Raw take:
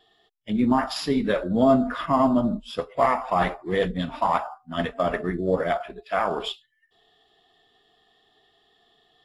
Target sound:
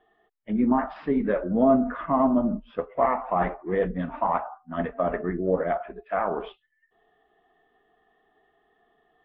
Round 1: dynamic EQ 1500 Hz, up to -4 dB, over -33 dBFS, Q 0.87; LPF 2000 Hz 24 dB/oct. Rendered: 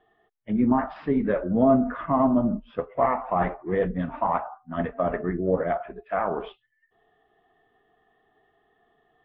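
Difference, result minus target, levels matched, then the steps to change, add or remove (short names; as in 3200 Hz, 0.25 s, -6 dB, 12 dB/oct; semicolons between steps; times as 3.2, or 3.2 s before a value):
125 Hz band +3.0 dB
add after LPF: bell 110 Hz -12.5 dB 0.55 oct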